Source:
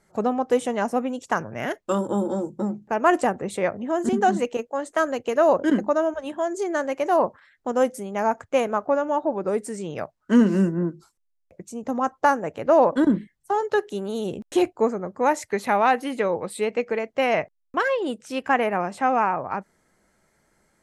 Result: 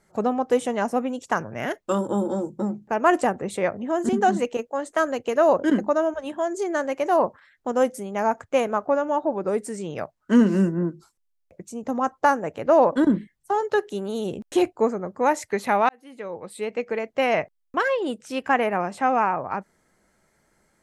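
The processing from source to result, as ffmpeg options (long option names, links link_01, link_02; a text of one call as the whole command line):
ffmpeg -i in.wav -filter_complex "[0:a]asplit=2[link_01][link_02];[link_01]atrim=end=15.89,asetpts=PTS-STARTPTS,afade=type=out:start_time=15.886:duration=0.004:curve=hsin[link_03];[link_02]atrim=start=15.89,asetpts=PTS-STARTPTS,afade=type=in:duration=1.25[link_04];[link_03][link_04]concat=n=2:v=0:a=1" out.wav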